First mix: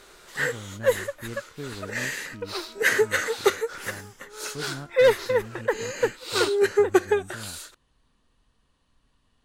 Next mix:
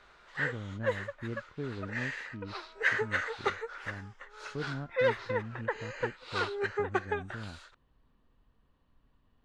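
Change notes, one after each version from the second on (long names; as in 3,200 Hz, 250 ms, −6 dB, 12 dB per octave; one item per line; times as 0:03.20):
background: add high-pass filter 810 Hz 12 dB per octave
master: add head-to-tape spacing loss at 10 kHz 31 dB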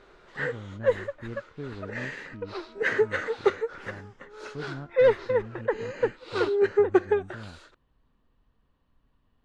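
background: remove high-pass filter 810 Hz 12 dB per octave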